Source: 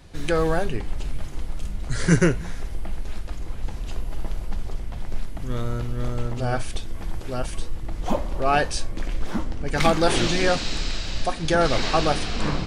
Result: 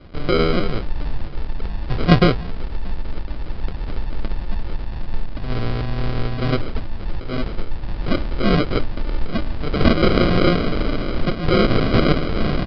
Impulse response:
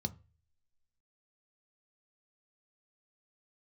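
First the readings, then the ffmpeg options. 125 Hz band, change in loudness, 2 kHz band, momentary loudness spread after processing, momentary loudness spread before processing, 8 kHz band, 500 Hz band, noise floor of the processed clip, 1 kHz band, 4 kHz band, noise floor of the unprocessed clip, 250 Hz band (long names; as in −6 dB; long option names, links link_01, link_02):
+5.5 dB, +4.0 dB, +1.5 dB, 15 LU, 15 LU, below −20 dB, +3.5 dB, −28 dBFS, 0.0 dB, +1.5 dB, −32 dBFS, +7.0 dB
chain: -af "highshelf=frequency=2600:width_type=q:width=1.5:gain=6,aresample=16000,acrusher=samples=18:mix=1:aa=0.000001,aresample=44100,aresample=11025,aresample=44100,volume=4dB"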